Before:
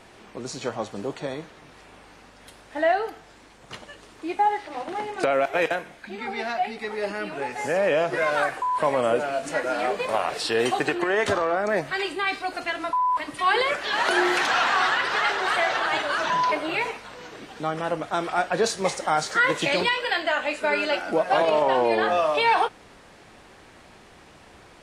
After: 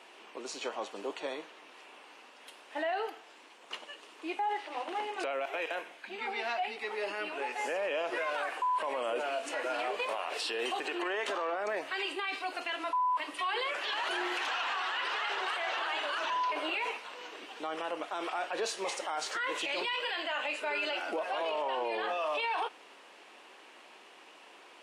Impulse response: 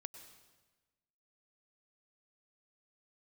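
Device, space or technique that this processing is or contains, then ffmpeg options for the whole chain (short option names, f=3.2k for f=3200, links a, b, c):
laptop speaker: -af "highpass=f=300:w=0.5412,highpass=f=300:w=1.3066,equalizer=f=1k:t=o:w=0.48:g=4.5,equalizer=f=2.8k:t=o:w=0.54:g=9,alimiter=limit=-19dB:level=0:latency=1:release=37,volume=-6.5dB"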